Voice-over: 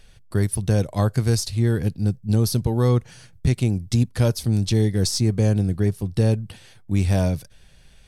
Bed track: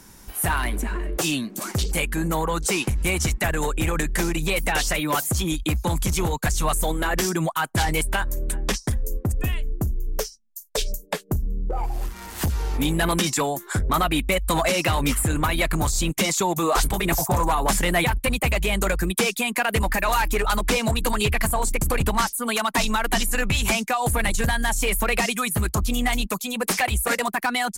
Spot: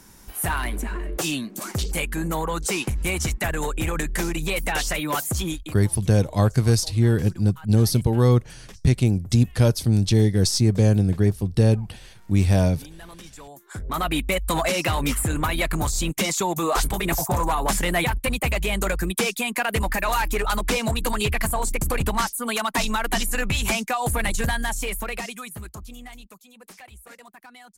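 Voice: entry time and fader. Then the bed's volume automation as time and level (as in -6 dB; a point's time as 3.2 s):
5.40 s, +1.5 dB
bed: 5.48 s -2 dB
5.88 s -21.5 dB
13.38 s -21.5 dB
14.1 s -1.5 dB
24.52 s -1.5 dB
26.46 s -23 dB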